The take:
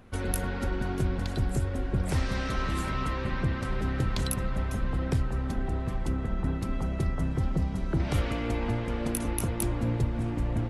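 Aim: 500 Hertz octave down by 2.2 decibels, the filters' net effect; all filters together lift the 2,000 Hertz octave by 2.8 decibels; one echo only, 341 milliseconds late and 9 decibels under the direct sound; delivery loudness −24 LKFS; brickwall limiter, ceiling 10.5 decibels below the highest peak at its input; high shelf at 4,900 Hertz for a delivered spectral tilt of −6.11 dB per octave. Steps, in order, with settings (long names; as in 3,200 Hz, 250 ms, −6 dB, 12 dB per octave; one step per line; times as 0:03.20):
parametric band 500 Hz −3 dB
parametric band 2,000 Hz +4.5 dB
high-shelf EQ 4,900 Hz −5 dB
brickwall limiter −25.5 dBFS
single-tap delay 341 ms −9 dB
level +10.5 dB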